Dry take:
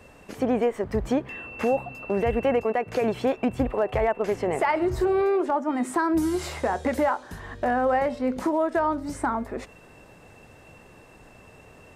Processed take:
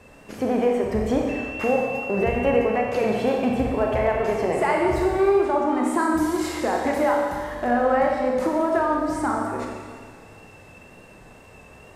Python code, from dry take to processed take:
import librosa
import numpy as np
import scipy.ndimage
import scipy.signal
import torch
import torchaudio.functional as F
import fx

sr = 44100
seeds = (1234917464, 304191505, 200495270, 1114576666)

y = fx.rev_schroeder(x, sr, rt60_s=1.8, comb_ms=29, drr_db=-0.5)
y = fx.wow_flutter(y, sr, seeds[0], rate_hz=2.1, depth_cents=25.0)